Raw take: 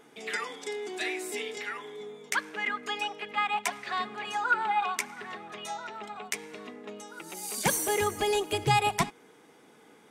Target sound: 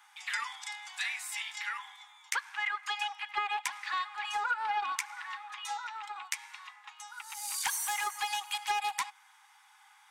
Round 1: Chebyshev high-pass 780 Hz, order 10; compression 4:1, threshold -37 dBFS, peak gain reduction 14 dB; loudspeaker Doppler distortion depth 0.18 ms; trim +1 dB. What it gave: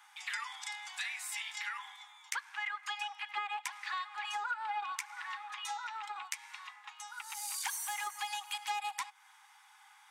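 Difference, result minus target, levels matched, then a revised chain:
compression: peak gain reduction +5 dB
Chebyshev high-pass 780 Hz, order 10; compression 4:1, threshold -30 dBFS, peak gain reduction 8.5 dB; loudspeaker Doppler distortion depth 0.18 ms; trim +1 dB

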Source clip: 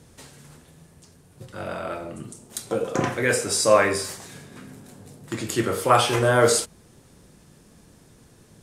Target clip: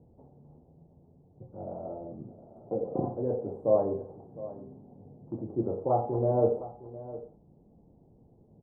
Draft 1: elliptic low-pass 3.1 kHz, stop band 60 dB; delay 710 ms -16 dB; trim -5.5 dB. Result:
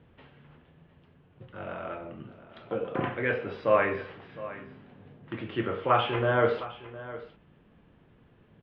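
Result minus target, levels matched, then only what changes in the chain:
1 kHz band +3.5 dB
change: elliptic low-pass 810 Hz, stop band 60 dB

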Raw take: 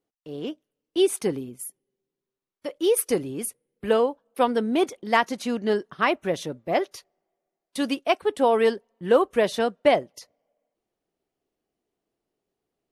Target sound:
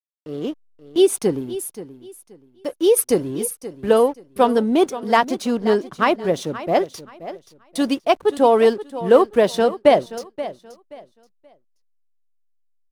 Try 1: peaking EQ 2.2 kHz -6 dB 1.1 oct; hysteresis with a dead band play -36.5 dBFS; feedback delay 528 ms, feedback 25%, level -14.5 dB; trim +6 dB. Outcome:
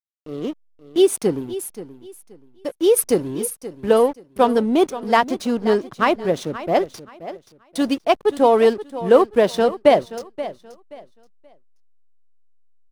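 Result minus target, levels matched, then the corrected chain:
hysteresis with a dead band: distortion +6 dB
peaking EQ 2.2 kHz -6 dB 1.1 oct; hysteresis with a dead band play -43.5 dBFS; feedback delay 528 ms, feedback 25%, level -14.5 dB; trim +6 dB

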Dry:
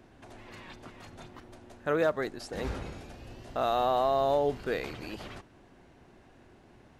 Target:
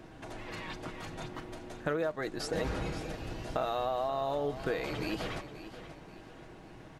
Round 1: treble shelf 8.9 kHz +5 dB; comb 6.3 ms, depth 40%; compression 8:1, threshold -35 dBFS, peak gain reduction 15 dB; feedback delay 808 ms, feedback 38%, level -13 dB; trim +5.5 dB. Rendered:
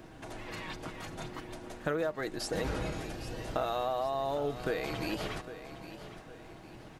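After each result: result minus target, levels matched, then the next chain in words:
echo 275 ms late; 8 kHz band +3.0 dB
treble shelf 8.9 kHz +5 dB; comb 6.3 ms, depth 40%; compression 8:1, threshold -35 dBFS, peak gain reduction 15 dB; feedback delay 533 ms, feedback 38%, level -13 dB; trim +5.5 dB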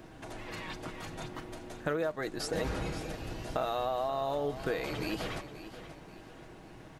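8 kHz band +2.5 dB
treble shelf 8.9 kHz -2 dB; comb 6.3 ms, depth 40%; compression 8:1, threshold -35 dBFS, peak gain reduction 15 dB; feedback delay 533 ms, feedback 38%, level -13 dB; trim +5.5 dB

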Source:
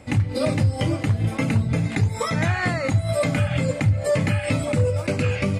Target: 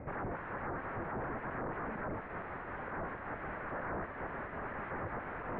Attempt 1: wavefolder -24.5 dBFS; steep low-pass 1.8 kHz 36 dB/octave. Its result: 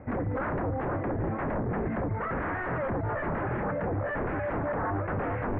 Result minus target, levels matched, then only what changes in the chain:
wavefolder: distortion -23 dB
change: wavefolder -33 dBFS

